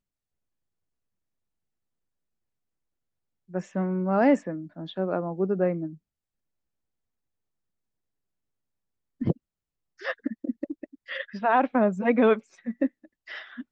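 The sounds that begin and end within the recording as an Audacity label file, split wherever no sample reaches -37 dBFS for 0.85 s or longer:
3.540000	5.940000	sound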